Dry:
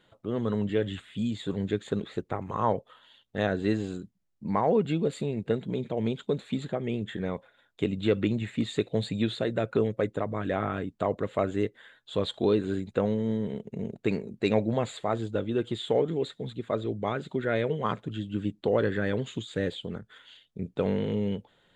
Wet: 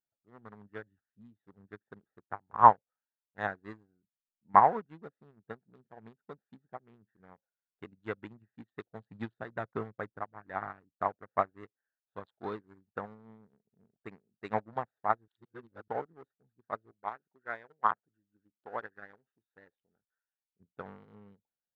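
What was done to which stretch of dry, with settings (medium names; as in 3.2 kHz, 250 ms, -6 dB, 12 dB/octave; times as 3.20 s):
9.10–10.21 s: bass shelf 260 Hz +5.5 dB
15.28–15.88 s: reverse
16.91–20.60 s: peaking EQ 110 Hz -10.5 dB 2.6 oct
whole clip: local Wiener filter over 41 samples; high-order bell 1.2 kHz +14.5 dB; upward expansion 2.5:1, over -36 dBFS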